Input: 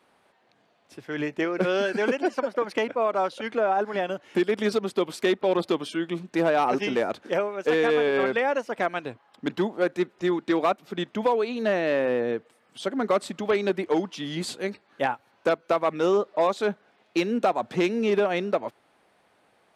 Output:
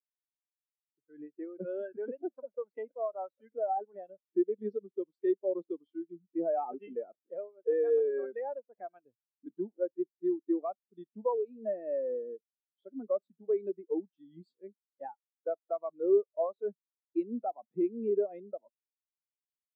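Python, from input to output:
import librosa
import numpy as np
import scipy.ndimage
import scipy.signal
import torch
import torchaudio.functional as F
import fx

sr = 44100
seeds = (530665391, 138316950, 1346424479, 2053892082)

y = fx.spectral_expand(x, sr, expansion=2.5)
y = y * librosa.db_to_amplitude(-5.0)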